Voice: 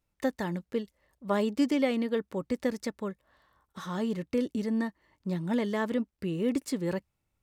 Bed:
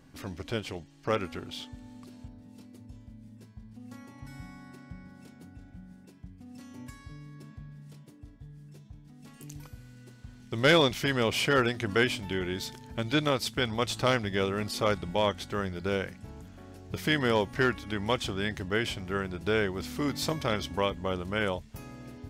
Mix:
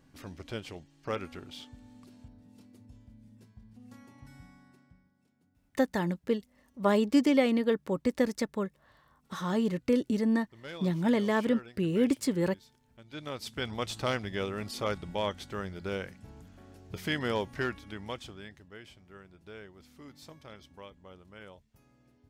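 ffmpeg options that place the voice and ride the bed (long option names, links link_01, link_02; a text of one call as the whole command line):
ffmpeg -i stem1.wav -i stem2.wav -filter_complex "[0:a]adelay=5550,volume=2.5dB[link_01];[1:a]volume=11.5dB,afade=type=out:start_time=4.13:duration=0.98:silence=0.149624,afade=type=in:start_time=13.07:duration=0.63:silence=0.141254,afade=type=out:start_time=17.41:duration=1.22:silence=0.177828[link_02];[link_01][link_02]amix=inputs=2:normalize=0" out.wav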